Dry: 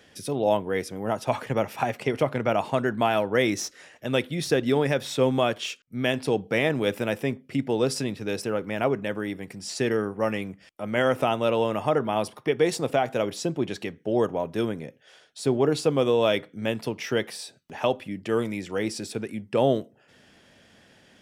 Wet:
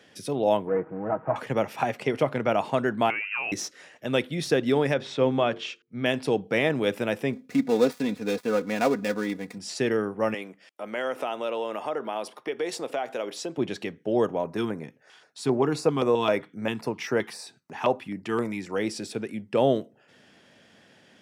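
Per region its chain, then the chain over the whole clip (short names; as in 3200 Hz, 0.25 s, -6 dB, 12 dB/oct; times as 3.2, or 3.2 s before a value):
0.67–1.36 CVSD 16 kbps + LPF 1500 Hz 24 dB/oct + comb 6.3 ms, depth 55%
3.1–3.52 compressor 3:1, threshold -28 dBFS + inverted band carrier 2900 Hz
4.94–6.06 air absorption 110 m + notches 50/100/150/200/250/300/350/400/450 Hz
7.33–9.58 switching dead time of 0.12 ms + notch 3000 Hz, Q 9.6 + comb 4.1 ms, depth 71%
10.34–13.58 HPF 330 Hz + compressor 2:1, threshold -29 dBFS
14.44–18.76 bell 990 Hz +4.5 dB 0.84 oct + LFO notch square 3.8 Hz 560–3200 Hz
whole clip: HPF 120 Hz; high shelf 9500 Hz -7 dB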